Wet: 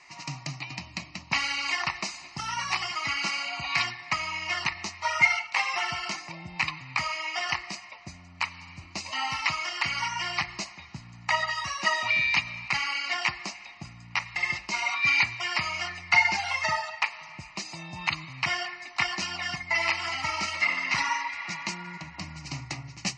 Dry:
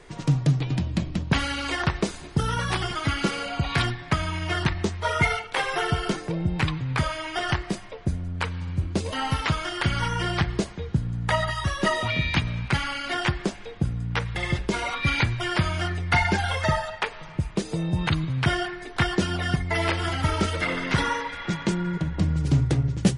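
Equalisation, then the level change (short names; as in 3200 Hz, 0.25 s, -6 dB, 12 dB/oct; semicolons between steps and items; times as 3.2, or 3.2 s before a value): band-pass 3300 Hz, Q 0.57; fixed phaser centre 2300 Hz, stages 8; +6.0 dB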